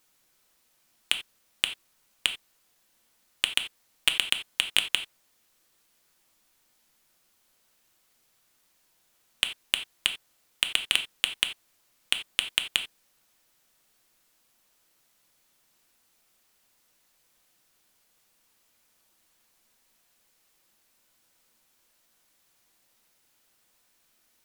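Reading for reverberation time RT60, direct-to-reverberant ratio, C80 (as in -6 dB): not exponential, 6.5 dB, 18.0 dB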